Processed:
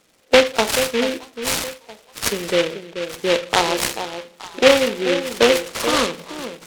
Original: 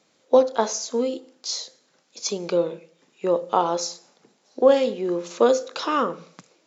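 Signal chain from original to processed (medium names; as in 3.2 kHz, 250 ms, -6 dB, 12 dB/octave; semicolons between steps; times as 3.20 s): knee-point frequency compression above 1.9 kHz 4:1; on a send: echo whose repeats swap between lows and highs 434 ms, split 920 Hz, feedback 51%, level -9 dB; on the sum: delay time shaken by noise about 2.3 kHz, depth 0.14 ms; trim +3 dB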